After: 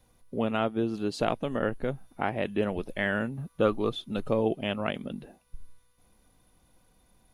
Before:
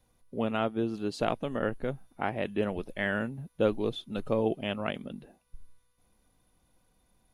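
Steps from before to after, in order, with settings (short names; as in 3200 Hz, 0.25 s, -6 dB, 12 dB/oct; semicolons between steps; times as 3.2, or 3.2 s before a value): 3.37–3.93 bell 1200 Hz +13.5 dB 0.23 oct; in parallel at -2 dB: compressor, threshold -37 dBFS, peak gain reduction 16.5 dB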